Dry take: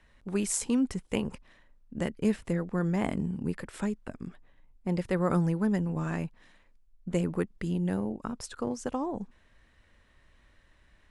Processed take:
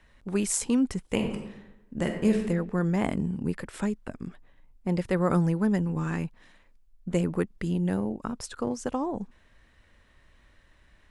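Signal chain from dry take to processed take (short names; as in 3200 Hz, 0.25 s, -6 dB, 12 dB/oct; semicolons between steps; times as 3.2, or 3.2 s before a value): 1.13–2.43 reverb throw, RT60 0.96 s, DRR 3.5 dB; 5.82–6.25 bell 640 Hz -11.5 dB 0.29 oct; gain +2.5 dB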